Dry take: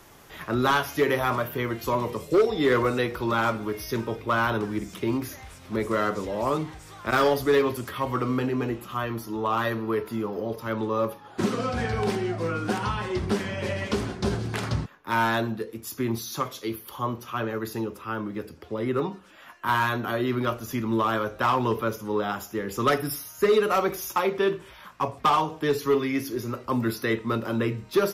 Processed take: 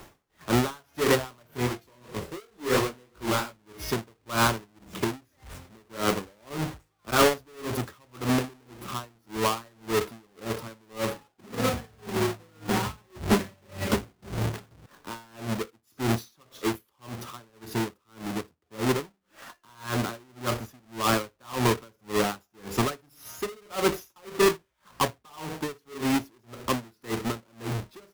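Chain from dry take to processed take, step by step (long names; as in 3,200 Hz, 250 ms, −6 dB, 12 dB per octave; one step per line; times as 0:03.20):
each half-wave held at its own peak
0:01.47–0:03.59: chorus effect 2.9 Hz, delay 19 ms, depth 5.5 ms
tremolo with a sine in dB 1.8 Hz, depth 35 dB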